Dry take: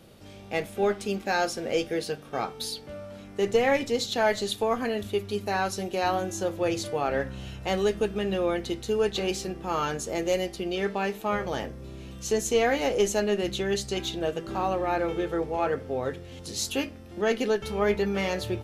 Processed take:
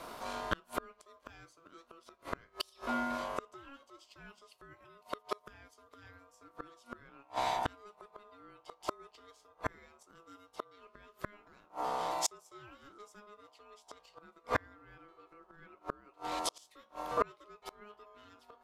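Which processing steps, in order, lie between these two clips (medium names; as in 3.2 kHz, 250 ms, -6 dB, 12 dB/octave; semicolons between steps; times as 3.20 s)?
ring modulator 830 Hz; inverted gate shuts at -25 dBFS, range -36 dB; trim +8.5 dB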